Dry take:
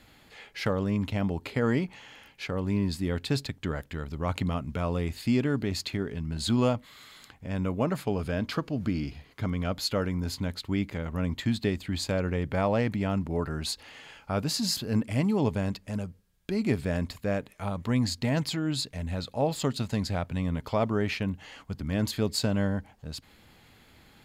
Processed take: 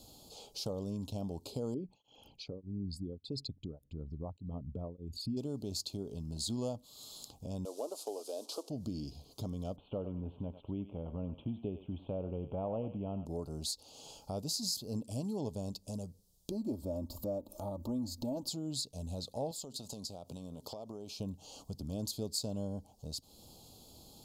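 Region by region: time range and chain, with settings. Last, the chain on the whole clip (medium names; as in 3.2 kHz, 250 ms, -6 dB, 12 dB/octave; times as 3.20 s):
1.74–5.37 s: resonances exaggerated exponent 2 + tremolo of two beating tones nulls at 1.7 Hz
7.65–8.70 s: one-bit delta coder 64 kbps, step -44 dBFS + inverse Chebyshev high-pass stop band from 170 Hz
9.76–13.26 s: steep low-pass 3.1 kHz 96 dB/octave + thinning echo 96 ms, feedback 36%, high-pass 910 Hz, level -8 dB
16.51–18.48 s: high-order bell 4.5 kHz -12.5 dB 2.9 oct + comb 3.4 ms, depth 79% + upward compressor, threshold -28 dBFS
19.51–21.19 s: high-pass 240 Hz 6 dB/octave + compression 12:1, threshold -36 dBFS
whole clip: Chebyshev band-stop 660–5000 Hz, order 2; tilt shelf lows -4.5 dB; compression 2:1, threshold -48 dBFS; trim +4 dB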